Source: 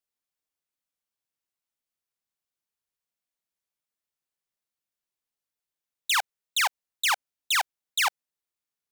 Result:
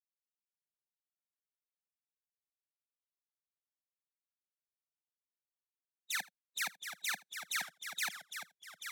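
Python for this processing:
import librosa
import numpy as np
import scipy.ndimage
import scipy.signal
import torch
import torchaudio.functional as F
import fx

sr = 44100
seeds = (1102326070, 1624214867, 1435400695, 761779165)

p1 = fx.lower_of_two(x, sr, delay_ms=0.49)
p2 = scipy.signal.sosfilt(scipy.signal.cheby1(3, 1.0, 170.0, 'highpass', fs=sr, output='sos'), p1)
p3 = fx.pitch_keep_formants(p2, sr, semitones=2.0)
p4 = fx.high_shelf(p3, sr, hz=12000.0, db=7.0)
p5 = fx.env_lowpass(p4, sr, base_hz=2500.0, full_db=-27.5)
p6 = p5 + fx.echo_single(p5, sr, ms=80, db=-22.0, dry=0)
p7 = fx.echo_pitch(p6, sr, ms=361, semitones=-1, count=2, db_per_echo=-6.0)
p8 = fx.band_widen(p7, sr, depth_pct=40)
y = p8 * 10.0 ** (-8.0 / 20.0)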